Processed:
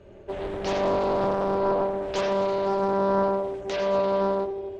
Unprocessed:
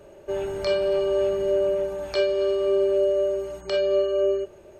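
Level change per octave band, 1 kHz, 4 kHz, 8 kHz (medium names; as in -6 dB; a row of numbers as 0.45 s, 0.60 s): +14.5 dB, -4.0 dB, no reading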